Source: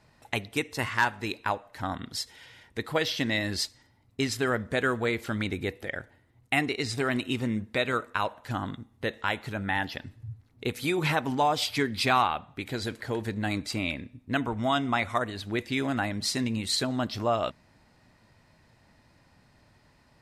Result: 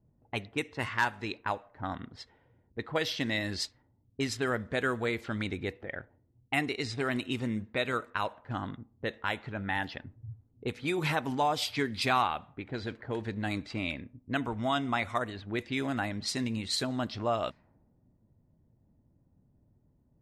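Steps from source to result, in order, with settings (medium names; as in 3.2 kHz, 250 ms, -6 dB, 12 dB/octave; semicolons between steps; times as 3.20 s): level-controlled noise filter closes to 310 Hz, open at -24.5 dBFS; trim -3.5 dB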